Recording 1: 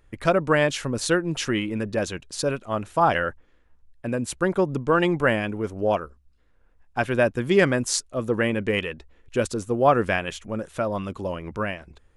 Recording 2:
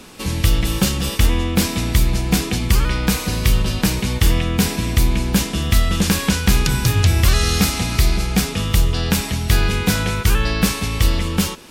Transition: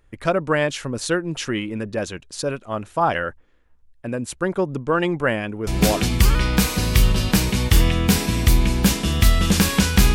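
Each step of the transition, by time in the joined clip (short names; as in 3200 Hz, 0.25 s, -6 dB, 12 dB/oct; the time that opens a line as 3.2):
recording 1
5.87 switch to recording 2 from 2.37 s, crossfade 0.40 s logarithmic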